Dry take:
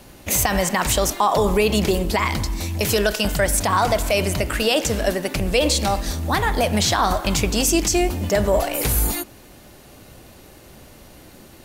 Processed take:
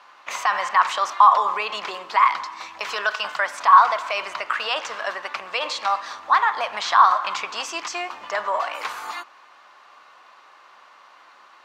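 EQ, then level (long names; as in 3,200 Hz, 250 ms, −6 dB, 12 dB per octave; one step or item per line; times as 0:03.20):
high-pass with resonance 1,100 Hz, resonance Q 4.5
high-frequency loss of the air 170 metres
−1.5 dB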